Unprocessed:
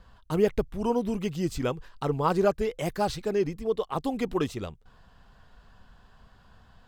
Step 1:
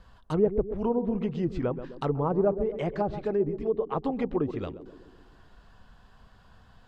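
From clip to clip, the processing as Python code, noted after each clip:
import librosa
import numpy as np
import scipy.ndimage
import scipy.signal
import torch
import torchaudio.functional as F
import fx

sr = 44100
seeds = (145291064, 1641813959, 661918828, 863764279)

y = fx.echo_banded(x, sr, ms=129, feedback_pct=59, hz=320.0, wet_db=-9.5)
y = fx.env_lowpass_down(y, sr, base_hz=740.0, full_db=-22.0)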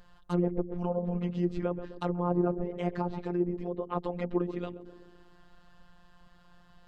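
y = fx.robotise(x, sr, hz=176.0)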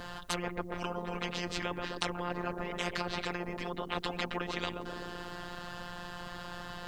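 y = fx.spectral_comp(x, sr, ratio=4.0)
y = F.gain(torch.from_numpy(y), 5.5).numpy()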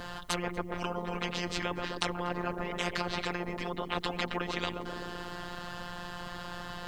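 y = x + 10.0 ** (-24.0 / 20.0) * np.pad(x, (int(240 * sr / 1000.0), 0))[:len(x)]
y = F.gain(torch.from_numpy(y), 2.0).numpy()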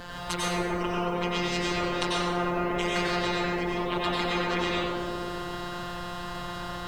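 y = fx.rev_plate(x, sr, seeds[0], rt60_s=1.3, hf_ratio=0.65, predelay_ms=80, drr_db=-5.5)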